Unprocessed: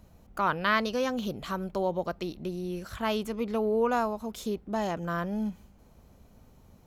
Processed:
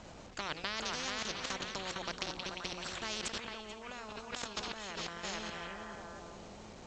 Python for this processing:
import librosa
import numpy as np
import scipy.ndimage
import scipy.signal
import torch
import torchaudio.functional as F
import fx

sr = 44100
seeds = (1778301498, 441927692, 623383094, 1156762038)

y = fx.peak_eq(x, sr, hz=5900.0, db=-3.5, octaves=0.86)
y = y + 10.0 ** (-6.5 / 20.0) * np.pad(y, (int(433 * sr / 1000.0), 0))[:len(y)]
y = fx.level_steps(y, sr, step_db=16)
y = fx.low_shelf(y, sr, hz=85.0, db=-7.5)
y = fx.hum_notches(y, sr, base_hz=60, count=9)
y = fx.echo_stepped(y, sr, ms=175, hz=3600.0, octaves=-0.7, feedback_pct=70, wet_db=-10)
y = fx.over_compress(y, sr, threshold_db=-45.0, ratio=-1.0, at=(3.21, 5.23), fade=0.02)
y = fx.quant_dither(y, sr, seeds[0], bits=12, dither='none')
y = scipy.signal.sosfilt(scipy.signal.butter(12, 7600.0, 'lowpass', fs=sr, output='sos'), y)
y = fx.spectral_comp(y, sr, ratio=4.0)
y = y * 10.0 ** (1.0 / 20.0)